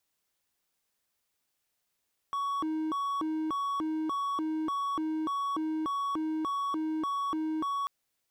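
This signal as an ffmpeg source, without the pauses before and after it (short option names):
-f lavfi -i "aevalsrc='0.0447*(1-4*abs(mod((717*t+403/1.7*(0.5-abs(mod(1.7*t,1)-0.5)))+0.25,1)-0.5))':d=5.54:s=44100"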